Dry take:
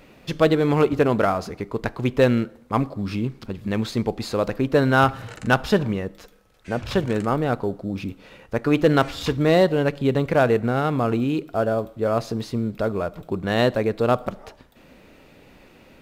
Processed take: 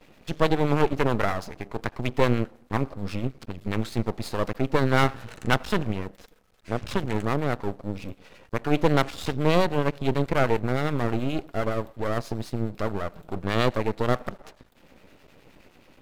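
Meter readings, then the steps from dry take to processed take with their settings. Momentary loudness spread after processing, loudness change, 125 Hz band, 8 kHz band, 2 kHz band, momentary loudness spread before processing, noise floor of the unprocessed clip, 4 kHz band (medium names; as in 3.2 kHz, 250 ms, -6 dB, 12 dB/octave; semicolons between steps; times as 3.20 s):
11 LU, -4.5 dB, -2.5 dB, -2.0 dB, -3.5 dB, 11 LU, -52 dBFS, -2.5 dB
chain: harmonic tremolo 9.5 Hz, depth 50%, crossover 800 Hz; half-wave rectifier; trim +1.5 dB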